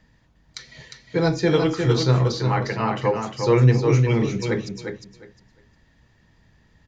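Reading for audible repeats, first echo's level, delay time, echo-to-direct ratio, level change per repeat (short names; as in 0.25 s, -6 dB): 3, -5.5 dB, 0.355 s, -5.5 dB, -14.5 dB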